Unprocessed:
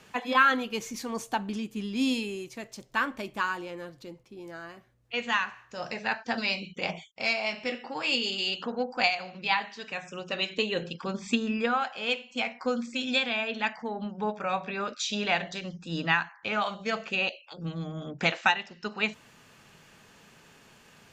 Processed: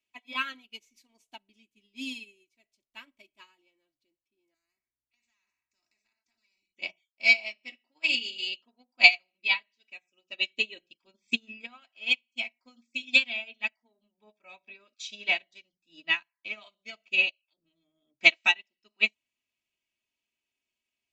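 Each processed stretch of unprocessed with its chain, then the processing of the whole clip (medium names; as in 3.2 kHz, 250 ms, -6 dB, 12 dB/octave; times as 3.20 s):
4.54–6.77 s: compression, threshold -31 dBFS + static phaser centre 1.3 kHz, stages 4 + spectrum-flattening compressor 2:1
whole clip: resonant high shelf 1.9 kHz +6.5 dB, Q 3; comb 3.1 ms, depth 76%; upward expansion 2.5:1, over -35 dBFS; trim -1 dB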